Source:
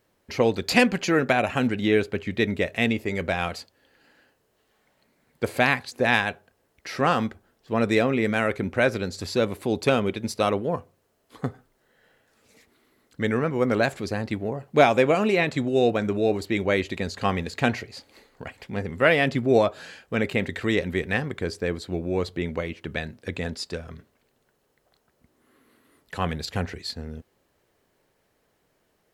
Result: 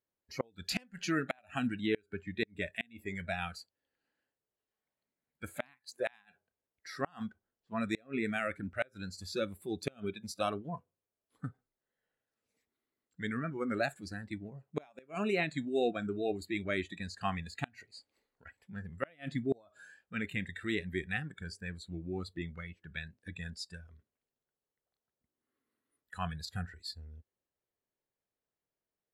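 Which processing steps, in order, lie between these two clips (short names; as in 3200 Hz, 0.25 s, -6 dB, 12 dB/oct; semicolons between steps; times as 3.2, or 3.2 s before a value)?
spectral noise reduction 17 dB; wow and flutter 26 cents; flipped gate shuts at -10 dBFS, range -32 dB; gain -9 dB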